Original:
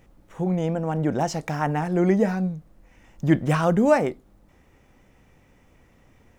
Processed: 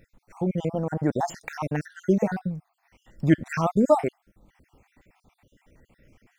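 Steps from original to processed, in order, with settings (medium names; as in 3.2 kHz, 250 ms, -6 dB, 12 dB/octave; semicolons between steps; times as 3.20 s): random holes in the spectrogram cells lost 55%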